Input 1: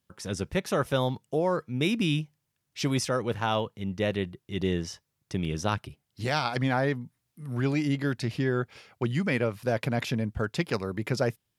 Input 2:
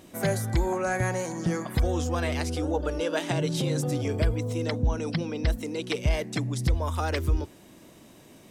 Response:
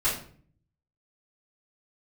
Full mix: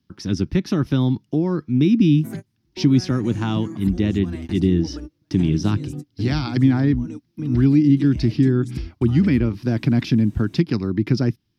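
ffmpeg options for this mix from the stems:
-filter_complex "[0:a]highshelf=f=6400:t=q:w=3:g=-7,volume=1.26,asplit=2[s0][s1];[1:a]acompressor=threshold=0.0178:ratio=3,adelay=2100,volume=0.708[s2];[s1]apad=whole_len=467772[s3];[s2][s3]sidechaingate=range=0.00891:threshold=0.00355:ratio=16:detection=peak[s4];[s0][s4]amix=inputs=2:normalize=0,lowshelf=f=400:t=q:w=3:g=8,acrossover=split=300[s5][s6];[s6]acompressor=threshold=0.0562:ratio=5[s7];[s5][s7]amix=inputs=2:normalize=0"

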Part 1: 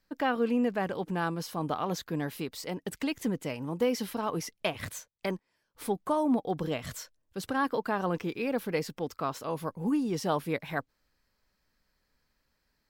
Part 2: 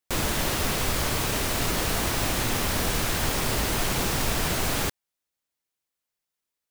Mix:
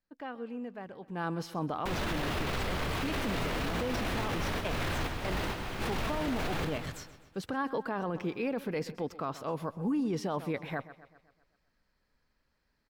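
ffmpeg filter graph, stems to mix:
-filter_complex "[0:a]lowpass=f=3400:p=1,afade=t=in:st=1.07:d=0.25:silence=0.237137,asplit=3[s0][s1][s2];[s1]volume=0.119[s3];[1:a]acrossover=split=3900[s4][s5];[s5]acompressor=threshold=0.00447:ratio=4:attack=1:release=60[s6];[s4][s6]amix=inputs=2:normalize=0,adelay=1750,volume=0.794,asplit=2[s7][s8];[s8]volume=0.335[s9];[s2]apad=whole_len=373012[s10];[s7][s10]sidechaingate=range=0.0224:threshold=0.002:ratio=16:detection=peak[s11];[s3][s9]amix=inputs=2:normalize=0,aecho=0:1:128|256|384|512|640|768|896|1024:1|0.52|0.27|0.141|0.0731|0.038|0.0198|0.0103[s12];[s0][s11][s12]amix=inputs=3:normalize=0,alimiter=level_in=1.06:limit=0.0631:level=0:latency=1:release=10,volume=0.944"

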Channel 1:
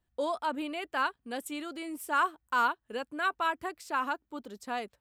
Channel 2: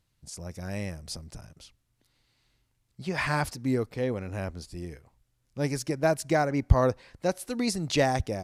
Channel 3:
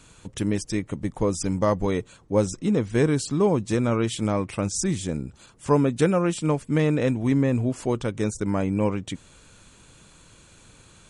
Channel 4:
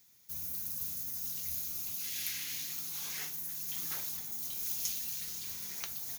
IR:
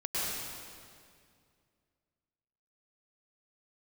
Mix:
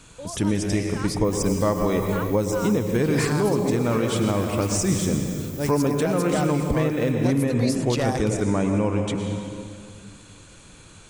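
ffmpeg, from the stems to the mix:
-filter_complex "[0:a]volume=0.422[s0];[1:a]highshelf=f=6800:g=6.5,aeval=exprs='clip(val(0),-1,0.106)':c=same,volume=1.19[s1];[2:a]volume=1.12,asplit=2[s2][s3];[s3]volume=0.355[s4];[3:a]highshelf=f=7300:g=10.5,adelay=950,volume=0.141,asplit=2[s5][s6];[s6]volume=0.224[s7];[4:a]atrim=start_sample=2205[s8];[s4][s7]amix=inputs=2:normalize=0[s9];[s9][s8]afir=irnorm=-1:irlink=0[s10];[s0][s1][s2][s5][s10]amix=inputs=5:normalize=0,alimiter=limit=0.266:level=0:latency=1:release=277"

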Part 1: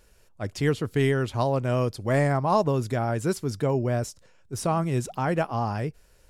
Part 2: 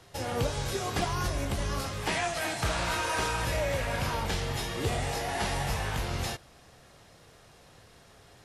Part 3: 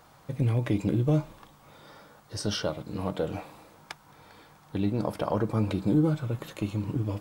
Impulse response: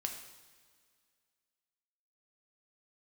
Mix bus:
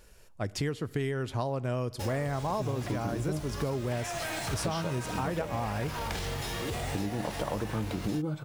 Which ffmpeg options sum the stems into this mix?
-filter_complex "[0:a]volume=1.12,asplit=2[s0][s1];[s1]volume=0.188[s2];[1:a]alimiter=level_in=1.12:limit=0.0631:level=0:latency=1:release=28,volume=0.891,acrusher=bits=6:mix=0:aa=0.5,adelay=1850,volume=1.12[s3];[2:a]adelay=2200,volume=1.26[s4];[3:a]atrim=start_sample=2205[s5];[s2][s5]afir=irnorm=-1:irlink=0[s6];[s0][s3][s4][s6]amix=inputs=4:normalize=0,acompressor=threshold=0.0355:ratio=6"

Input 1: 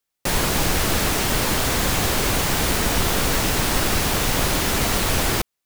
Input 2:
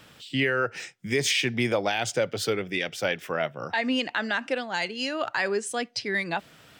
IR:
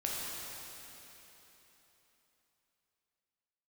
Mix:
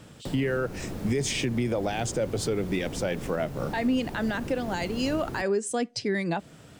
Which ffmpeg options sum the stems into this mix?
-filter_complex "[0:a]acrossover=split=100|540|7600[s0][s1][s2][s3];[s0]acompressor=threshold=0.00794:ratio=4[s4];[s1]acompressor=threshold=0.0251:ratio=4[s5];[s2]acompressor=threshold=0.0158:ratio=4[s6];[s3]acompressor=threshold=0.01:ratio=4[s7];[s4][s5][s6][s7]amix=inputs=4:normalize=0,volume=0.355[s8];[1:a]equalizer=f=7900:w=1:g=10.5,volume=1.12[s9];[s8][s9]amix=inputs=2:normalize=0,tiltshelf=f=820:g=8,alimiter=limit=0.126:level=0:latency=1:release=186"

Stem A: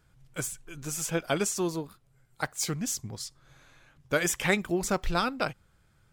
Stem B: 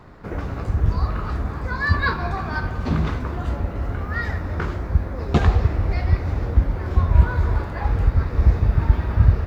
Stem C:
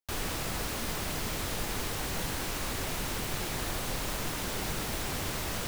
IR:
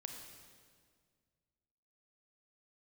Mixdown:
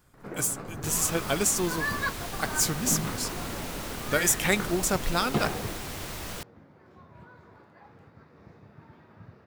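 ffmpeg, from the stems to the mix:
-filter_complex "[0:a]highshelf=f=6600:g=11.5,acrusher=bits=5:mode=log:mix=0:aa=0.000001,volume=1,asplit=2[s0][s1];[1:a]highpass=f=140:w=0.5412,highpass=f=140:w=1.3066,volume=0.447[s2];[2:a]adelay=750,volume=0.708[s3];[s1]apad=whole_len=417428[s4];[s2][s4]sidechaingate=range=0.158:threshold=0.001:ratio=16:detection=peak[s5];[s0][s5][s3]amix=inputs=3:normalize=0"

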